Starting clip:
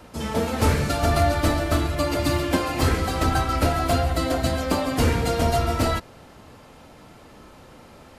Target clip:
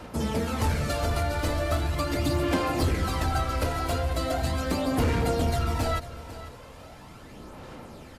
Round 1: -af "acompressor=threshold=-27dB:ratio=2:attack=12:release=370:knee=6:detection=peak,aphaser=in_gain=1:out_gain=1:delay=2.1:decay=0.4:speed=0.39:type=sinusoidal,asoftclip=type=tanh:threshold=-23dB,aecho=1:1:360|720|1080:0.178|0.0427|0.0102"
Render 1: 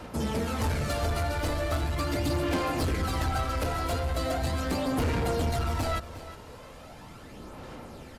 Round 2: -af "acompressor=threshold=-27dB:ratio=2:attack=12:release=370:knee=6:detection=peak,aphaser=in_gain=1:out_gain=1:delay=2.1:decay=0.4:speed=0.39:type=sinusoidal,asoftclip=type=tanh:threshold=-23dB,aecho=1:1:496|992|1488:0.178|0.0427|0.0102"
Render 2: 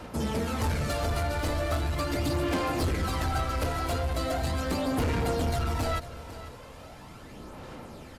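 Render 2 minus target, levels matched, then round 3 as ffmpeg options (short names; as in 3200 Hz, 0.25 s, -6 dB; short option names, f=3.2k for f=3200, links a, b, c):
soft clip: distortion +8 dB
-af "acompressor=threshold=-27dB:ratio=2:attack=12:release=370:knee=6:detection=peak,aphaser=in_gain=1:out_gain=1:delay=2.1:decay=0.4:speed=0.39:type=sinusoidal,asoftclip=type=tanh:threshold=-16.5dB,aecho=1:1:496|992|1488:0.178|0.0427|0.0102"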